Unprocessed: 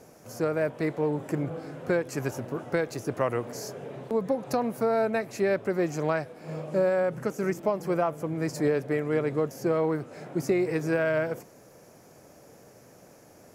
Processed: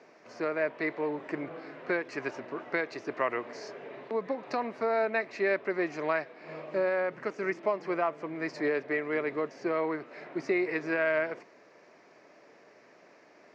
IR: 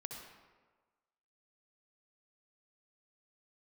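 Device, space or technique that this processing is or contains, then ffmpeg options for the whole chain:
phone earpiece: -af "highpass=450,equalizer=frequency=510:width_type=q:width=4:gain=-8,equalizer=frequency=790:width_type=q:width=4:gain=-7,equalizer=frequency=1400:width_type=q:width=4:gain=-4,equalizer=frequency=2000:width_type=q:width=4:gain=4,equalizer=frequency=3300:width_type=q:width=4:gain=-6,lowpass=frequency=4100:width=0.5412,lowpass=frequency=4100:width=1.3066,volume=3dB"

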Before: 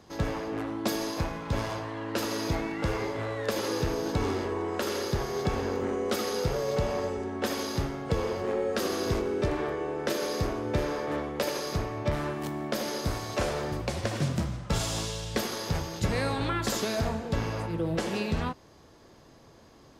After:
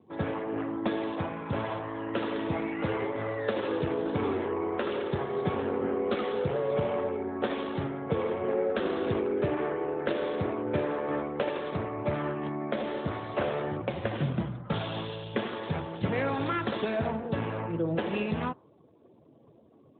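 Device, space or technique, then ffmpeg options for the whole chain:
mobile call with aggressive noise cancelling: -filter_complex "[0:a]asplit=3[link_01][link_02][link_03];[link_01]afade=type=out:start_time=0.42:duration=0.02[link_04];[link_02]lowpass=5700,afade=type=in:start_time=0.42:duration=0.02,afade=type=out:start_time=0.95:duration=0.02[link_05];[link_03]afade=type=in:start_time=0.95:duration=0.02[link_06];[link_04][link_05][link_06]amix=inputs=3:normalize=0,highpass=frequency=120:poles=1,afftdn=noise_reduction=22:noise_floor=-51,volume=1.5dB" -ar 8000 -c:a libopencore_amrnb -b:a 12200

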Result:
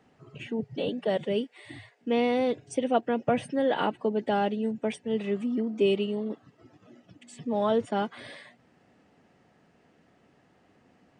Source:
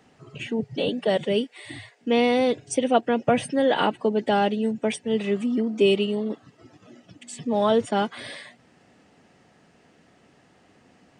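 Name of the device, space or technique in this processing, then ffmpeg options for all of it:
behind a face mask: -af "highshelf=frequency=3400:gain=-8,volume=-4.5dB"

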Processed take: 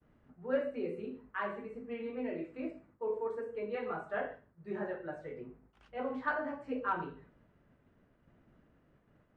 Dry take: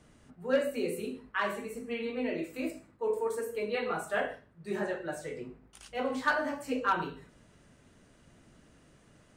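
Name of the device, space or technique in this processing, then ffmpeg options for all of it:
hearing-loss simulation: -af "lowpass=1800,agate=range=-33dB:threshold=-57dB:ratio=3:detection=peak,volume=-4.5dB"

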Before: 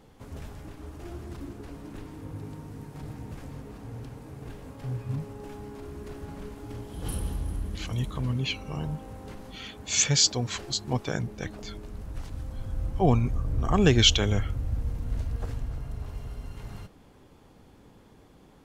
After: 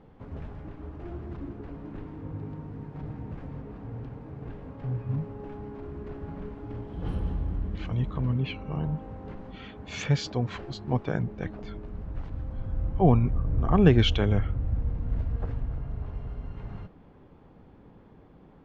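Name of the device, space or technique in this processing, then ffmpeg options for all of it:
phone in a pocket: -filter_complex "[0:a]asettb=1/sr,asplit=3[link_01][link_02][link_03];[link_01]atrim=end=8.384[link_04];[link_02]atrim=start=8.38:end=8.96,asetpts=PTS-STARTPTS,afade=type=in:duration=0.004:curve=qsin,afade=type=out:start_time=0.576:duration=0.004:curve=qsin,lowpass=5600[link_05];[link_03]atrim=start=8.956[link_06];[link_04][link_05]acrossfade=duration=0.004:curve1=hsin:curve2=qsin[link_07];[link_07][link_06]acrossfade=duration=0.004:curve1=qsin:curve2=hsin,lowpass=3000,equalizer=frequency=170:width_type=o:width=0.25:gain=4,highshelf=frequency=2400:gain=-10,volume=1.5dB"

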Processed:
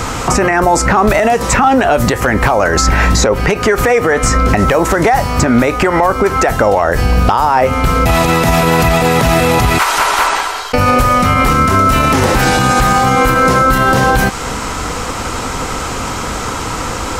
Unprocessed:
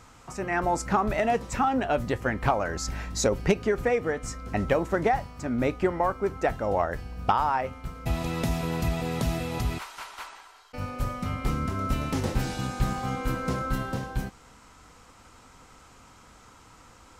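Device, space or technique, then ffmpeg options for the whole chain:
mastering chain: -filter_complex "[0:a]equalizer=frequency=440:width_type=o:width=0.95:gain=3.5,acrossover=split=790|2300|5200[link_01][link_02][link_03][link_04];[link_01]acompressor=threshold=-38dB:ratio=4[link_05];[link_02]acompressor=threshold=-36dB:ratio=4[link_06];[link_03]acompressor=threshold=-55dB:ratio=4[link_07];[link_04]acompressor=threshold=-50dB:ratio=4[link_08];[link_05][link_06][link_07][link_08]amix=inputs=4:normalize=0,acompressor=threshold=-37dB:ratio=2,asoftclip=type=hard:threshold=-25.5dB,alimiter=level_in=33.5dB:limit=-1dB:release=50:level=0:latency=1,volume=-1dB"

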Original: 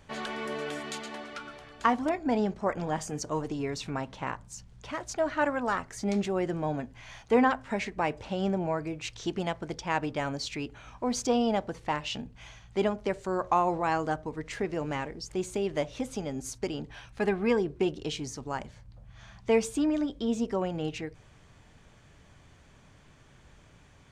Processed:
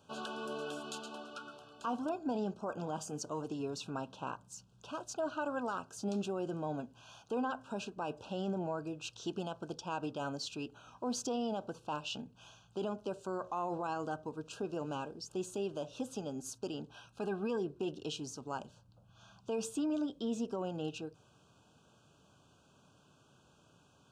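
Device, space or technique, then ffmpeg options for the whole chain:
PA system with an anti-feedback notch: -af "highpass=140,asuperstop=centerf=2000:order=20:qfactor=2.3,alimiter=limit=-22.5dB:level=0:latency=1:release=25,volume=-5.5dB"

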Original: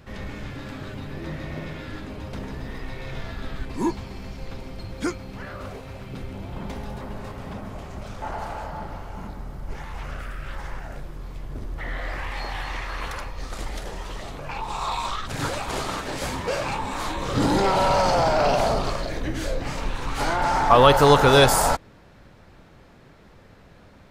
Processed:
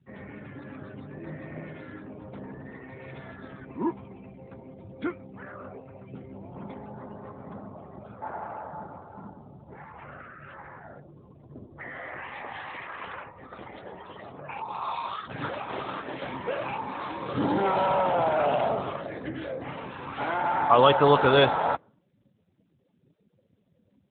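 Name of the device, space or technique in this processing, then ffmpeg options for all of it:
mobile call with aggressive noise cancelling: -af "highpass=frequency=160:poles=1,afftdn=noise_reduction=28:noise_floor=-42,volume=-3dB" -ar 8000 -c:a libopencore_amrnb -b:a 12200

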